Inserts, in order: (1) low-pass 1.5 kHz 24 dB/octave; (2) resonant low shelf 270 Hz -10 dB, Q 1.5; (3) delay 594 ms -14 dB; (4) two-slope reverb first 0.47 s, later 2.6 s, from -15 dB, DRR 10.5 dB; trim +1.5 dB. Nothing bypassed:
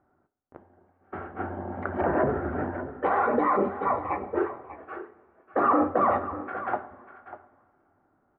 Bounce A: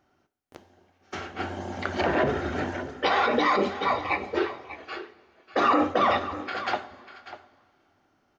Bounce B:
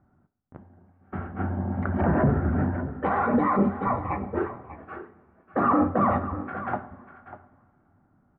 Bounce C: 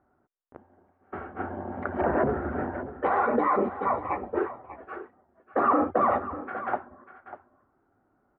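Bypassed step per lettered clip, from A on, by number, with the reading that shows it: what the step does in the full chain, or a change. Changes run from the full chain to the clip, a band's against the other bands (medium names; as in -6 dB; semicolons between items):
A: 1, 2 kHz band +6.5 dB; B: 2, 125 Hz band +12.0 dB; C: 4, echo-to-direct -9.0 dB to -14.0 dB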